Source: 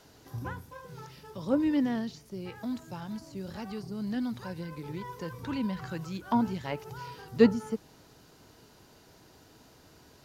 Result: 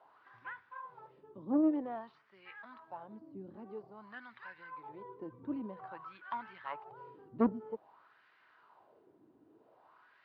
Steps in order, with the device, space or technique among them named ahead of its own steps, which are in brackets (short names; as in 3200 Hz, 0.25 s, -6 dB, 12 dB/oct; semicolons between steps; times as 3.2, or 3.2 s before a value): wah-wah guitar rig (wah 0.51 Hz 280–1900 Hz, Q 3.1; tube stage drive 23 dB, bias 0.6; speaker cabinet 96–3800 Hz, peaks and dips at 170 Hz -5 dB, 260 Hz -5 dB, 460 Hz -4 dB, 1100 Hz +6 dB); gain +5.5 dB